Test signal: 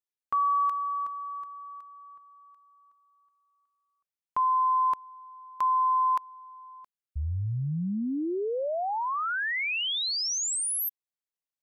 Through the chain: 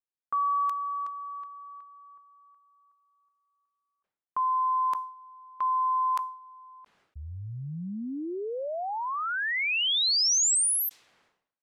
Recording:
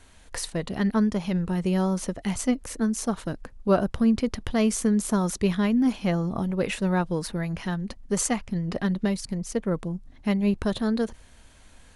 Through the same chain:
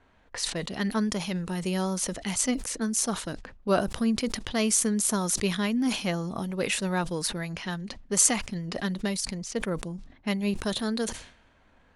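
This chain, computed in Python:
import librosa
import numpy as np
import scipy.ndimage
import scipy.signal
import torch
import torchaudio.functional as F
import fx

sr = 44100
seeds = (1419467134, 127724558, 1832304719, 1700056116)

y = fx.low_shelf(x, sr, hz=90.0, db=-10.5)
y = fx.env_lowpass(y, sr, base_hz=1200.0, full_db=-25.5)
y = fx.high_shelf(y, sr, hz=2500.0, db=11.5)
y = fx.sustainer(y, sr, db_per_s=100.0)
y = y * 10.0 ** (-3.5 / 20.0)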